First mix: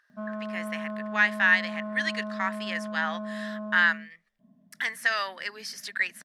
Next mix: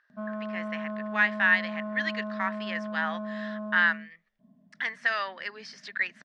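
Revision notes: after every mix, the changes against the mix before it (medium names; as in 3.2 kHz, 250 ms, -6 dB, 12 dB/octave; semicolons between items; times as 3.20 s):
speech: add distance through air 130 m; master: add Bessel low-pass 6.5 kHz, order 4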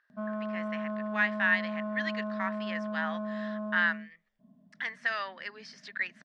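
speech -4.0 dB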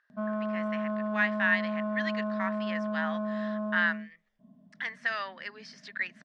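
background +3.0 dB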